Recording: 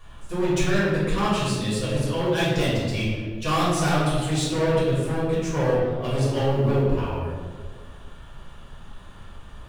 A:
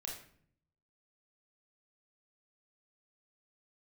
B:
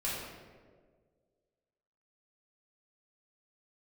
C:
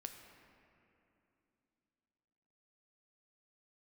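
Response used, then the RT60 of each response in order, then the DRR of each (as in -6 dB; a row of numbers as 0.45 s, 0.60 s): B; 0.60 s, 1.7 s, 2.9 s; -2.0 dB, -9.0 dB, 4.5 dB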